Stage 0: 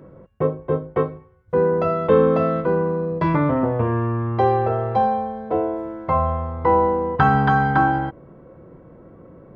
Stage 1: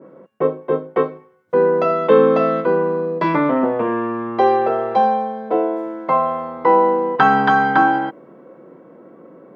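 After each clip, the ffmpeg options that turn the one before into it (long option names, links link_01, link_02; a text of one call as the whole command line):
ffmpeg -i in.wav -af "highpass=frequency=210:width=0.5412,highpass=frequency=210:width=1.3066,adynamicequalizer=threshold=0.0282:dfrequency=1900:dqfactor=0.7:tfrequency=1900:tqfactor=0.7:attack=5:release=100:ratio=0.375:range=2:mode=boostabove:tftype=highshelf,volume=3.5dB" out.wav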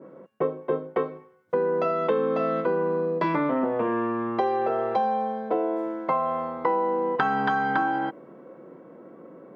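ffmpeg -i in.wav -af "acompressor=threshold=-18dB:ratio=6,volume=-3dB" out.wav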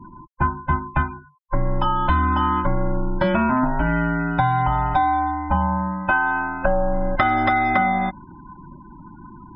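ffmpeg -i in.wav -af "afftfilt=real='real(if(between(b,1,1008),(2*floor((b-1)/24)+1)*24-b,b),0)':imag='imag(if(between(b,1,1008),(2*floor((b-1)/24)+1)*24-b,b),0)*if(between(b,1,1008),-1,1)':win_size=2048:overlap=0.75,afftfilt=real='re*gte(hypot(re,im),0.00794)':imag='im*gte(hypot(re,im),0.00794)':win_size=1024:overlap=0.75,volume=5.5dB" out.wav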